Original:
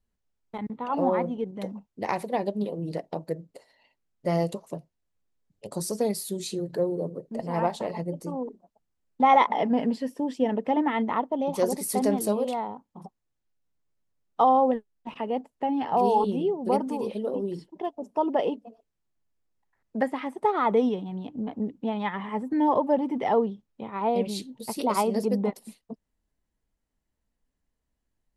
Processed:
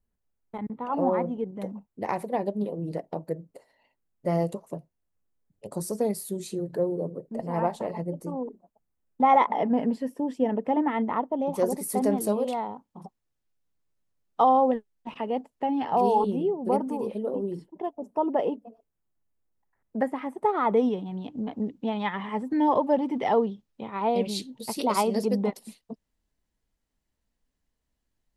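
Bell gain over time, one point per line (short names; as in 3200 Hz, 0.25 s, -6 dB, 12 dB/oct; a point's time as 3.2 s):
bell 4200 Hz 1.8 oct
11.96 s -8.5 dB
12.58 s 0 dB
15.94 s 0 dB
16.52 s -9.5 dB
20.21 s -9.5 dB
20.93 s -2.5 dB
21.31 s +3.5 dB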